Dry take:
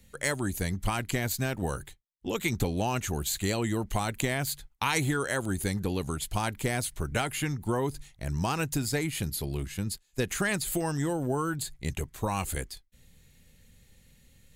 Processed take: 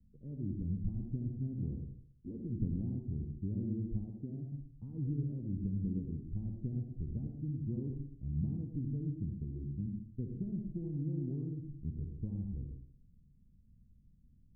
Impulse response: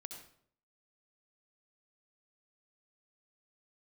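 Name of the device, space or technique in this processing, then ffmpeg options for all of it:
next room: -filter_complex "[0:a]lowpass=f=270:w=0.5412,lowpass=f=270:w=1.3066[s0];[1:a]atrim=start_sample=2205[s1];[s0][s1]afir=irnorm=-1:irlink=0,asettb=1/sr,asplit=3[s2][s3][s4];[s2]atrim=end=4.044[s5];[s3]atrim=start=4.04:end=4.52,asetpts=PTS-STARTPTS,afade=t=in:d=0.004:c=qsin,afade=t=out:st=0.476:d=0.004:c=qsin,highpass=f=190:p=1[s6];[s4]atrim=start=4.516[s7];[s5][s6]acrossfade=d=0.004:c1=hsin:c2=qsin[s8];[s8][s7]acrossfade=d=0.004:c1=qsin:c2=hsin"

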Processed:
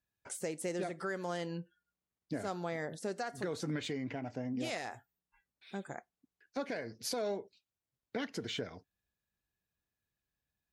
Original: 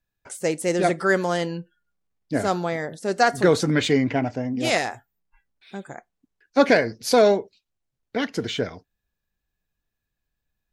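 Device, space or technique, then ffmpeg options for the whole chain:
podcast mastering chain: -af "highpass=62,acompressor=threshold=0.0398:ratio=2.5,alimiter=limit=0.0841:level=0:latency=1:release=312,volume=0.531" -ar 48000 -c:a libmp3lame -b:a 96k

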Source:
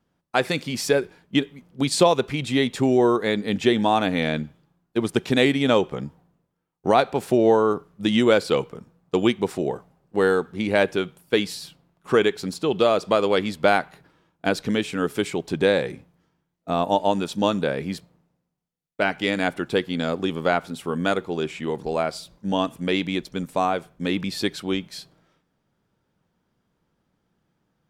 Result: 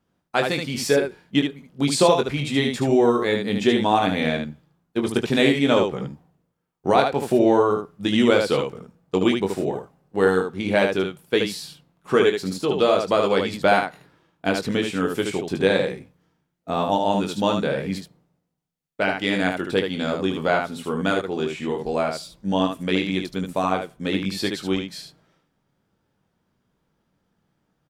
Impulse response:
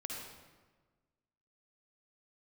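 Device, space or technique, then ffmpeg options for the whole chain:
slapback doubling: -filter_complex "[0:a]asplit=3[s0][s1][s2];[s1]adelay=21,volume=0.501[s3];[s2]adelay=75,volume=0.562[s4];[s0][s3][s4]amix=inputs=3:normalize=0,volume=0.891"

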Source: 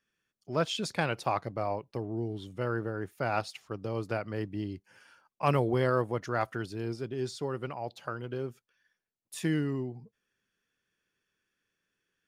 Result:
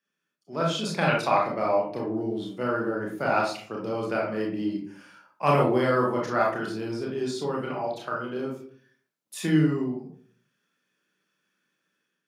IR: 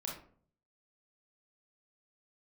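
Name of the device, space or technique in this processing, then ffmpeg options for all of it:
far laptop microphone: -filter_complex "[1:a]atrim=start_sample=2205[s0];[0:a][s0]afir=irnorm=-1:irlink=0,highpass=f=150:w=0.5412,highpass=f=150:w=1.3066,dynaudnorm=f=520:g=3:m=2.11,asettb=1/sr,asplit=3[s1][s2][s3];[s1]atrim=end=1.084[s4];[s2]atrim=start=1.08:end=2.23,asetpts=PTS-STARTPTS,afade=t=in:d=0.004:c=qsin,afade=t=out:st=1.146:d=0.004:c=qsin,equalizer=f=2200:t=o:w=1.4:g=4.5[s5];[s3]atrim=start=2.226[s6];[s4][s5]acrossfade=d=0.004:c1=hsin:c2=qsin[s7];[s7][s6]acrossfade=d=0.004:c1=qsin:c2=hsin"

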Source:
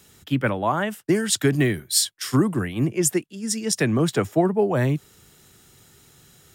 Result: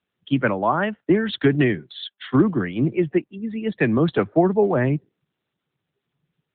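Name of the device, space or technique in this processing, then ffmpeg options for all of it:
mobile call with aggressive noise cancelling: -af "highpass=140,afftdn=nr=33:nf=-40,volume=1.41" -ar 8000 -c:a libopencore_amrnb -b:a 10200

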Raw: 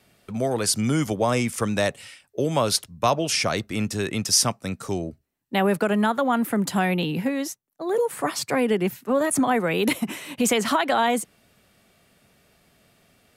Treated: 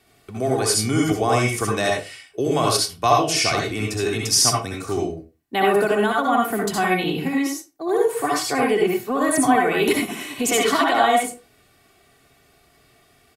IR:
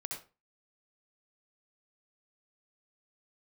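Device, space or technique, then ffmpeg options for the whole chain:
microphone above a desk: -filter_complex "[0:a]aecho=1:1:2.7:0.56[s0];[1:a]atrim=start_sample=2205[s1];[s0][s1]afir=irnorm=-1:irlink=0,volume=1.41"

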